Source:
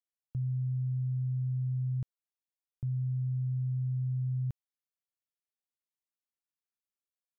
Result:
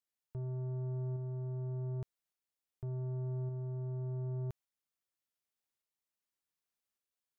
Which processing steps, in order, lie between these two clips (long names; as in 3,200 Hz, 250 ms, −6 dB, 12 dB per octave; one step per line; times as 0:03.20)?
soft clipping −39 dBFS, distortion −11 dB
shaped tremolo saw up 0.86 Hz, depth 30%
level +3.5 dB